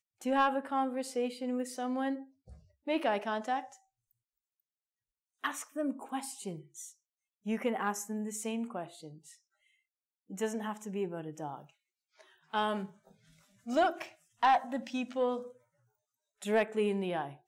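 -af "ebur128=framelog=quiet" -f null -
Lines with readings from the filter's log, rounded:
Integrated loudness:
  I:         -34.2 LUFS
  Threshold: -45.2 LUFS
Loudness range:
  LRA:         8.5 LU
  Threshold: -56.7 LUFS
  LRA low:   -41.6 LUFS
  LRA high:  -33.1 LUFS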